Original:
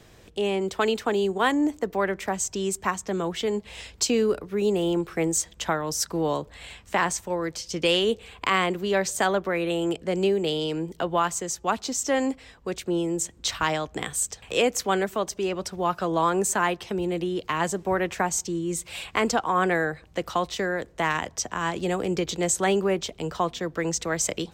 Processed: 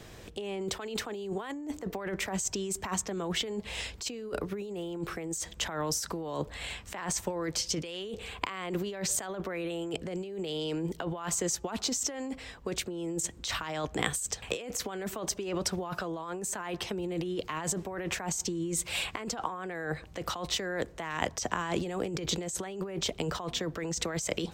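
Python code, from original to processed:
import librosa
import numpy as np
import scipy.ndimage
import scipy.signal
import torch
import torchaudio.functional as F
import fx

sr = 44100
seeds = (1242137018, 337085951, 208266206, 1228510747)

y = fx.over_compress(x, sr, threshold_db=-32.0, ratio=-1.0)
y = F.gain(torch.from_numpy(y), -2.5).numpy()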